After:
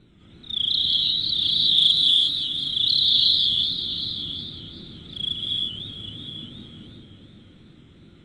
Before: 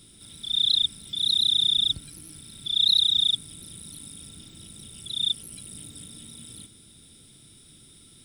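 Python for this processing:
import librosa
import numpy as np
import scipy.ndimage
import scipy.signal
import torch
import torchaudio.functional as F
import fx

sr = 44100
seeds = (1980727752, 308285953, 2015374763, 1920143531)

y = fx.wiener(x, sr, points=9)
y = fx.riaa(y, sr, side='recording', at=(1.77, 2.27))
y = fx.wow_flutter(y, sr, seeds[0], rate_hz=2.1, depth_cents=140.0)
y = fx.air_absorb(y, sr, metres=120.0)
y = y + 10.0 ** (-11.5 / 20.0) * np.pad(y, (int(769 * sr / 1000.0), 0))[:len(y)]
y = fx.rev_gated(y, sr, seeds[1], gate_ms=380, shape='rising', drr_db=-3.0)
y = fx.echo_warbled(y, sr, ms=189, feedback_pct=66, rate_hz=2.8, cents=180, wet_db=-10.5)
y = y * librosa.db_to_amplitude(2.0)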